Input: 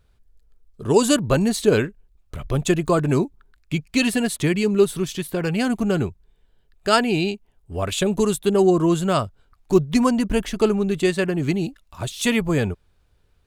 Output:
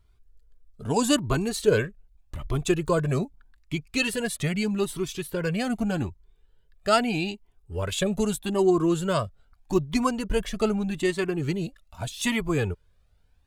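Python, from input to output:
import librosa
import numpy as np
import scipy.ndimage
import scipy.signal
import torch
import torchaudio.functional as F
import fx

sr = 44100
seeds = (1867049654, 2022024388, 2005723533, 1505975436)

y = fx.comb_cascade(x, sr, direction='rising', hz=0.81)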